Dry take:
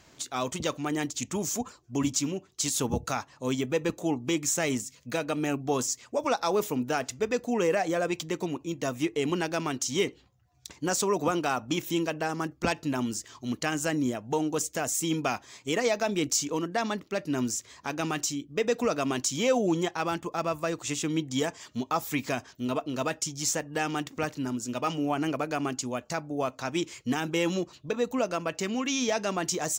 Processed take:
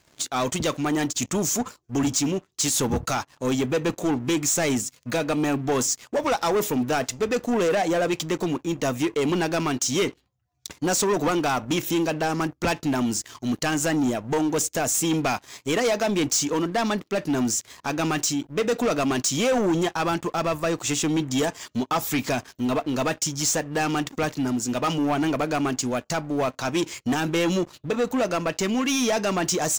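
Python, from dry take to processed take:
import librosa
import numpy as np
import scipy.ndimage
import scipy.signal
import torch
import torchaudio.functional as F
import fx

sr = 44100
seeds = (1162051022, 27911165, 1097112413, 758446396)

y = fx.leveller(x, sr, passes=3)
y = y * librosa.db_to_amplitude(-3.0)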